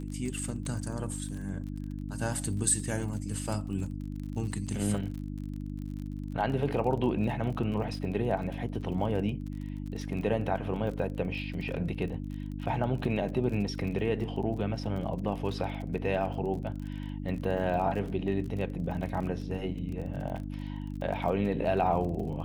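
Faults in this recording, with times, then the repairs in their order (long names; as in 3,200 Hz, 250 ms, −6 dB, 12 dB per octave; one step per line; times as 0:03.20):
surface crackle 35 per second −38 dBFS
mains hum 50 Hz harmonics 6 −37 dBFS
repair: click removal
hum removal 50 Hz, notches 6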